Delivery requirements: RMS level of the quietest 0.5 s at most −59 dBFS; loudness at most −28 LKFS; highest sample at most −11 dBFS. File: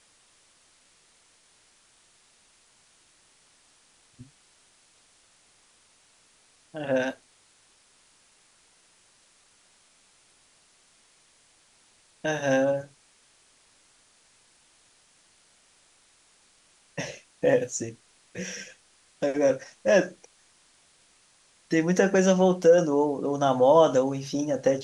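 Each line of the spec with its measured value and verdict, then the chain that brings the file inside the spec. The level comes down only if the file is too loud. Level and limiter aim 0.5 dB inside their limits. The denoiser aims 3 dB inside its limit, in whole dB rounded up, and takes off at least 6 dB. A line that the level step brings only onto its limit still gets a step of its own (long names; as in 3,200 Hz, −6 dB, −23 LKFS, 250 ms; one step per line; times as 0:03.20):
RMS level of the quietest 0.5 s −62 dBFS: in spec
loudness −24.5 LKFS: out of spec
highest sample −7.5 dBFS: out of spec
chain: level −4 dB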